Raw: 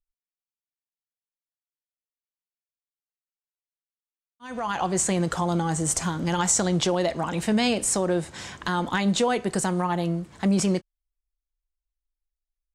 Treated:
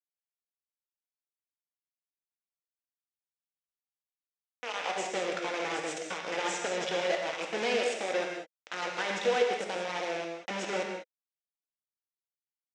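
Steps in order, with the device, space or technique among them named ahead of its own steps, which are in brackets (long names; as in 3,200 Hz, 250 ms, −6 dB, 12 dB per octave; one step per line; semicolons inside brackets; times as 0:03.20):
multiband delay without the direct sound highs, lows 50 ms, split 5,300 Hz
hand-held game console (bit reduction 4 bits; loudspeaker in its box 430–5,700 Hz, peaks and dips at 500 Hz +7 dB, 1,100 Hz −6 dB, 2,300 Hz +3 dB, 4,400 Hz −8 dB)
reverb whose tail is shaped and stops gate 220 ms flat, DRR 1 dB
level −8 dB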